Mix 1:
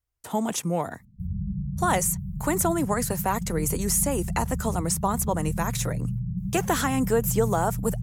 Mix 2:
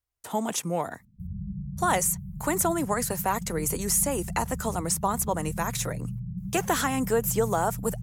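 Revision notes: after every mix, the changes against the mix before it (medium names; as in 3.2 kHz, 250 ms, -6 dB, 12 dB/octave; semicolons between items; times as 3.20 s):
master: add bass shelf 250 Hz -6.5 dB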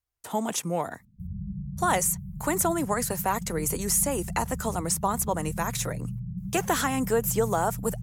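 no change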